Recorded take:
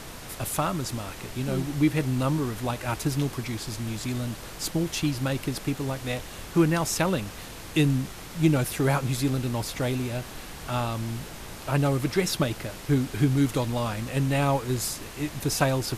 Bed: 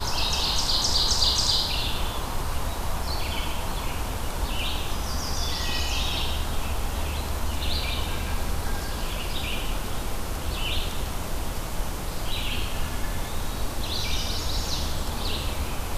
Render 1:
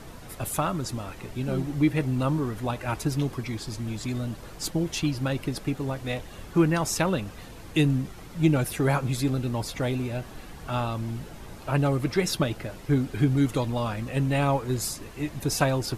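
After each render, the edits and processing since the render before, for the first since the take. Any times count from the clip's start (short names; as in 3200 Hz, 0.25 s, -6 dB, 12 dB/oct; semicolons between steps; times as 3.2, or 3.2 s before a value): denoiser 9 dB, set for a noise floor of -41 dBFS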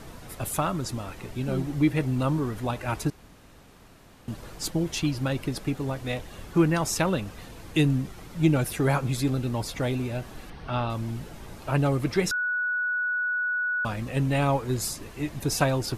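3.1–4.28 room tone; 10.5–10.9 polynomial smoothing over 15 samples; 12.31–13.85 bleep 1470 Hz -24 dBFS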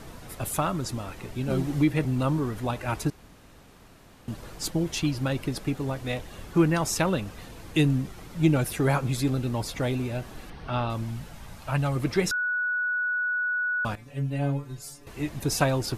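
1.5–2.05 three-band squash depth 40%; 11.03–11.95 bell 370 Hz -8 dB -> -14 dB 0.91 oct; 13.95–15.07 metallic resonator 140 Hz, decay 0.27 s, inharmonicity 0.002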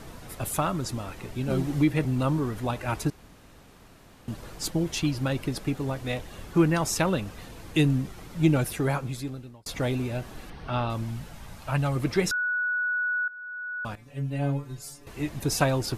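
8.59–9.66 fade out; 13.28–14.5 fade in, from -17.5 dB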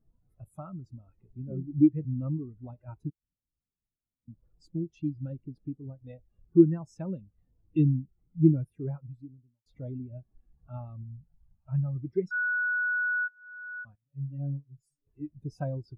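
in parallel at +2.5 dB: compressor, threshold -35 dBFS, peak gain reduction 18.5 dB; on the sum: spectral expander 2.5:1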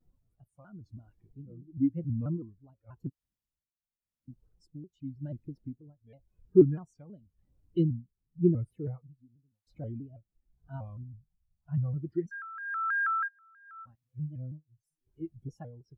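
tremolo 0.92 Hz, depth 83%; shaped vibrato square 3.1 Hz, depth 160 cents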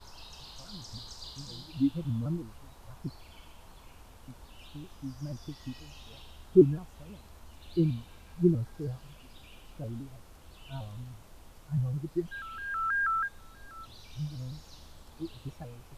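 add bed -23.5 dB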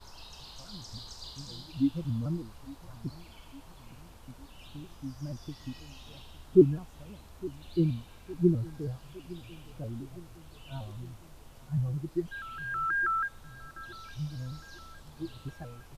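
feedback echo 0.86 s, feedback 58%, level -19.5 dB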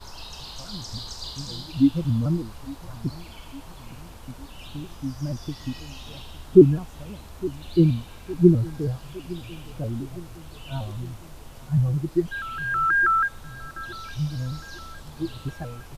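gain +9 dB; limiter -1 dBFS, peak gain reduction 2.5 dB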